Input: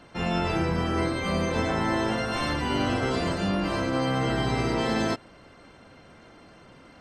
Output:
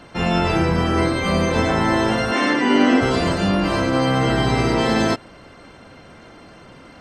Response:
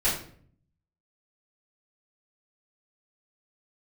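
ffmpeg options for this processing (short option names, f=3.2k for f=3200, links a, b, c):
-filter_complex "[0:a]asettb=1/sr,asplit=3[a][b][c];[a]atrim=end=2.314[d];[b]atrim=start=2.31:end=3.01,asetpts=PTS-STARTPTS,afade=t=in:d=0.004:c=qsin,afade=t=out:st=0.696:d=0.004:c=qsin,highpass=f=210:w=0.5412,highpass=f=210:w=1.3066,equalizer=f=260:t=q:w=4:g=9,equalizer=f=430:t=q:w=4:g=5,equalizer=f=1.9k:t=q:w=4:g=7,equalizer=f=4.1k:t=q:w=4:g=-4,lowpass=f=7.9k:w=0.5412,lowpass=f=7.9k:w=1.3066[e];[c]atrim=start=3.006[f];[d][e]acrossfade=d=0.004:c1=hsin:c2=qsin[g];[g][f]acrossfade=d=0.004:c1=qsin:c2=hsin,volume=7.5dB"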